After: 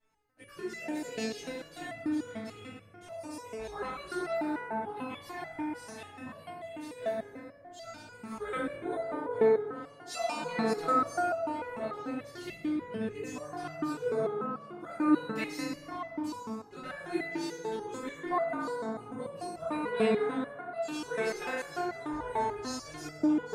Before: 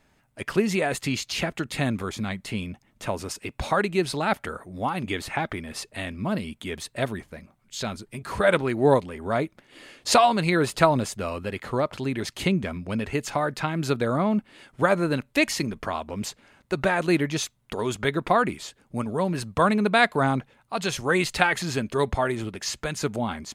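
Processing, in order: FDN reverb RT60 3.3 s, high-frequency decay 0.3×, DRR -7 dB; chorus voices 2, 0.11 Hz, delay 19 ms, depth 1.1 ms; stepped resonator 6.8 Hz 220–670 Hz

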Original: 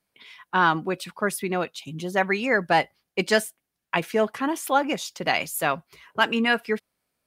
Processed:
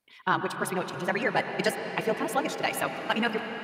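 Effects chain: granular stretch 0.5×, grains 33 ms; reverb RT60 5.3 s, pre-delay 91 ms, DRR 5.5 dB; gain -3.5 dB

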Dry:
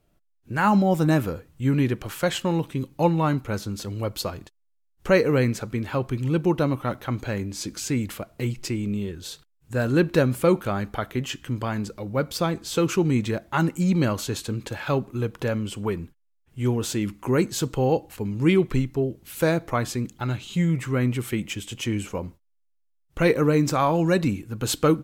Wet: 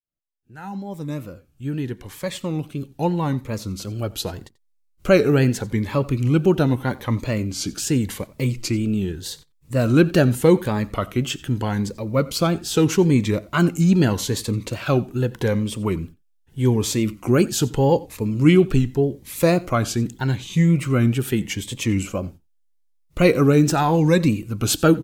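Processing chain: opening faded in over 5.61 s; wow and flutter 110 cents; on a send: echo 89 ms -21.5 dB; on the sum: cascading phaser rising 0.82 Hz; gain +5.5 dB

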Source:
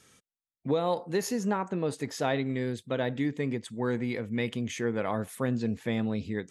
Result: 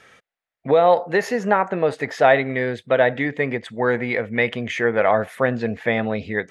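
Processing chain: EQ curve 300 Hz 0 dB, 670 Hz +14 dB, 1000 Hz +7 dB, 1900 Hz +14 dB, 2700 Hz +7 dB, 8000 Hz -8 dB; gain +3.5 dB

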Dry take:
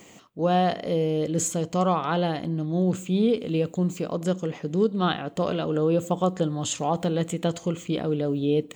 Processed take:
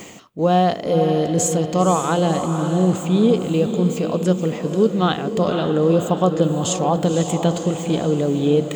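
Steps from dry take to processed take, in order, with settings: dynamic EQ 2100 Hz, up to -4 dB, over -40 dBFS, Q 1.2; reverse; upward compressor, threshold -33 dBFS; reverse; diffused feedback echo 0.519 s, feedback 47%, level -7.5 dB; gain +6 dB

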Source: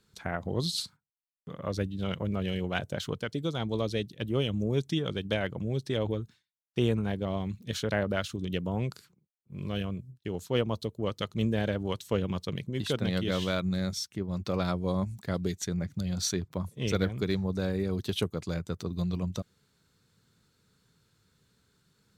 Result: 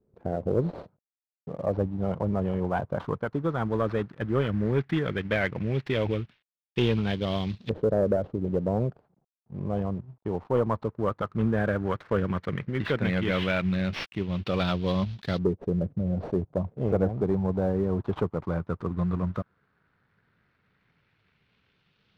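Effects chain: CVSD 32 kbps; LFO low-pass saw up 0.13 Hz 460–3900 Hz; sample leveller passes 1

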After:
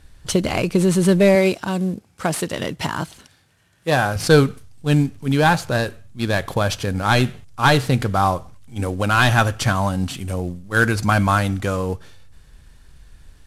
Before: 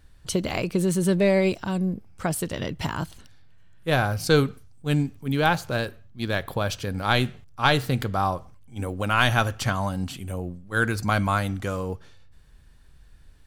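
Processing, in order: CVSD 64 kbps; 1.35–4.16 HPF 200 Hz 6 dB/oct; gain +6.5 dB

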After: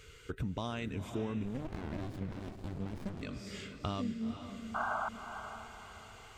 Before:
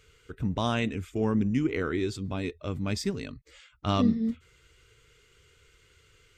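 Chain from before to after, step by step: compressor 6:1, threshold -40 dBFS, peak gain reduction 19.5 dB; 4.74–5.09 painted sound noise 600–1600 Hz -40 dBFS; diffused feedback echo 0.492 s, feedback 43%, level -9 dB; 1.45–3.22 running maximum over 65 samples; gain +5 dB

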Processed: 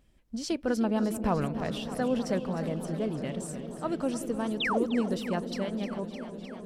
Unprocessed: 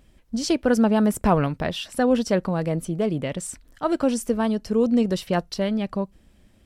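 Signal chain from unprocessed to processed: painted sound fall, 4.6–4.86, 220–4000 Hz -20 dBFS; dark delay 0.175 s, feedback 81%, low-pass 550 Hz, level -12 dB; warbling echo 0.304 s, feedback 79%, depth 68 cents, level -13 dB; gain -9 dB

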